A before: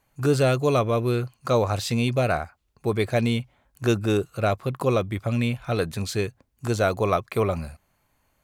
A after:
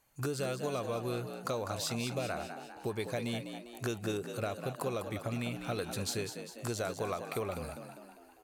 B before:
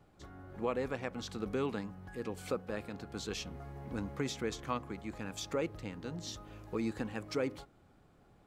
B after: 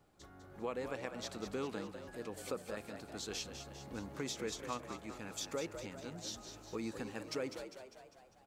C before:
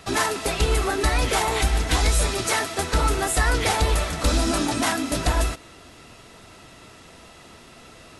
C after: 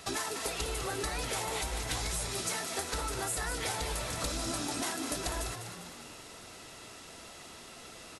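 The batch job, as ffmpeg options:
ffmpeg -i in.wav -filter_complex "[0:a]bass=frequency=250:gain=-4,treble=frequency=4000:gain=6,acompressor=threshold=-29dB:ratio=6,asplit=7[link_01][link_02][link_03][link_04][link_05][link_06][link_07];[link_02]adelay=200,afreqshift=61,volume=-8.5dB[link_08];[link_03]adelay=400,afreqshift=122,volume=-13.9dB[link_09];[link_04]adelay=600,afreqshift=183,volume=-19.2dB[link_10];[link_05]adelay=800,afreqshift=244,volume=-24.6dB[link_11];[link_06]adelay=1000,afreqshift=305,volume=-29.9dB[link_12];[link_07]adelay=1200,afreqshift=366,volume=-35.3dB[link_13];[link_01][link_08][link_09][link_10][link_11][link_12][link_13]amix=inputs=7:normalize=0,volume=-4dB" out.wav

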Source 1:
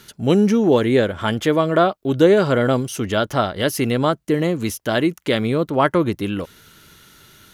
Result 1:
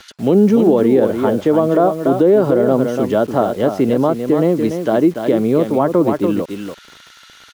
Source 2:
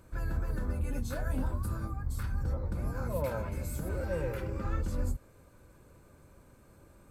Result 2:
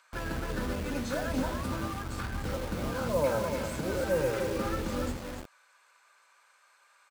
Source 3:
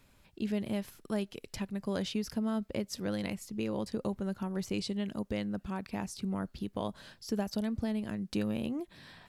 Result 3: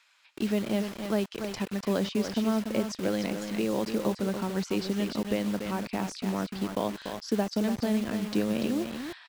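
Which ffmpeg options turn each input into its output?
ffmpeg -i in.wav -filter_complex "[0:a]aecho=1:1:289:0.398,aeval=exprs='val(0)+0.002*(sin(2*PI*60*n/s)+sin(2*PI*2*60*n/s)/2+sin(2*PI*3*60*n/s)/3+sin(2*PI*4*60*n/s)/4+sin(2*PI*5*60*n/s)/5)':channel_layout=same,acrossover=split=170 7300:gain=0.2 1 0.112[link_01][link_02][link_03];[link_01][link_02][link_03]amix=inputs=3:normalize=0,acrossover=split=990[link_04][link_05];[link_04]acrusher=bits=7:mix=0:aa=0.000001[link_06];[link_05]acompressor=threshold=-44dB:ratio=6[link_07];[link_06][link_07]amix=inputs=2:normalize=0,alimiter=level_in=10dB:limit=-1dB:release=50:level=0:latency=1,volume=-3dB" out.wav

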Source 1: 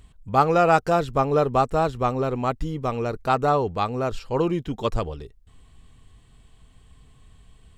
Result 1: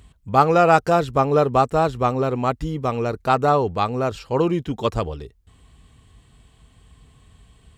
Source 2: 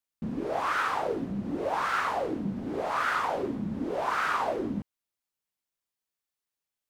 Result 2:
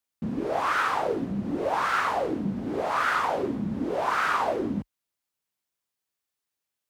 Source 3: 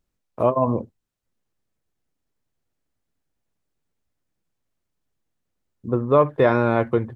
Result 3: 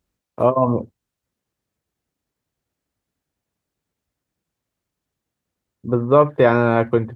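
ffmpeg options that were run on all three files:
ffmpeg -i in.wav -af "highpass=frequency=40:width=0.5412,highpass=frequency=40:width=1.3066,volume=3dB" out.wav

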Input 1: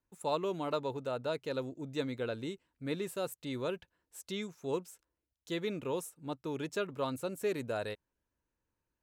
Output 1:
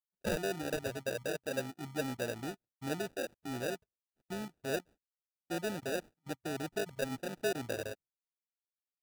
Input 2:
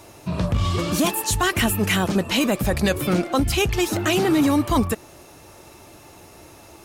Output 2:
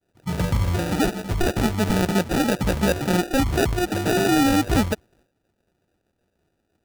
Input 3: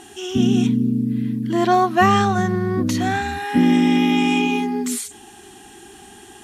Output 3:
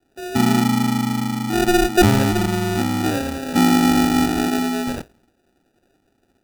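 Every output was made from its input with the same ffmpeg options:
ffmpeg -i in.wav -af "afwtdn=0.0316,agate=range=-33dB:threshold=-54dB:ratio=3:detection=peak,acrusher=samples=41:mix=1:aa=0.000001" out.wav

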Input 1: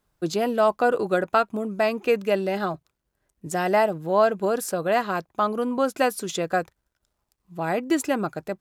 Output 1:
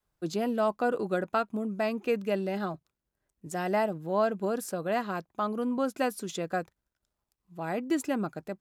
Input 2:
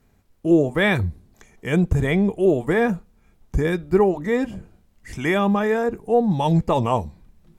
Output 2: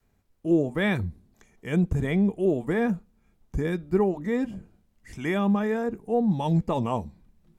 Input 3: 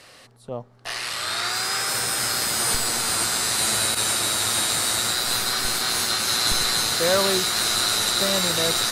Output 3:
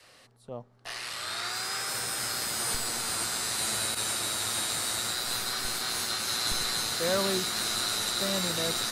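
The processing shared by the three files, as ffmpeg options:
ffmpeg -i in.wav -af "adynamicequalizer=threshold=0.02:dfrequency=220:dqfactor=1.4:tfrequency=220:tqfactor=1.4:attack=5:release=100:ratio=0.375:range=3:mode=boostabove:tftype=bell,volume=-8dB" out.wav

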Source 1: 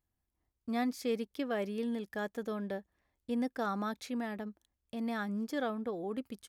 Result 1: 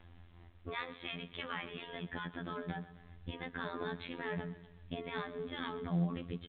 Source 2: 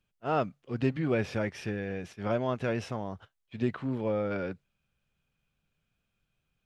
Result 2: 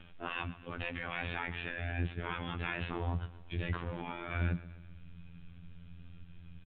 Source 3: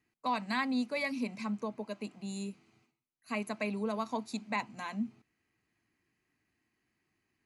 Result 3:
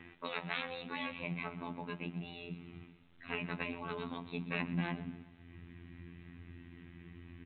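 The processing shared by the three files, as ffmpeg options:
ffmpeg -i in.wav -af "afftfilt=real='re*lt(hypot(re,im),0.0631)':imag='im*lt(hypot(re,im),0.0631)':win_size=1024:overlap=0.75,asubboost=boost=7.5:cutoff=230,acompressor=mode=upward:threshold=-41dB:ratio=2.5,aecho=1:1:127|254|381|508|635:0.15|0.0793|0.042|0.0223|0.0118,flanger=delay=3.2:depth=8.4:regen=-75:speed=0.41:shape=triangular,afftfilt=real='hypot(re,im)*cos(PI*b)':imag='0':win_size=2048:overlap=0.75,volume=11.5dB" -ar 8000 -c:a pcm_alaw out.wav

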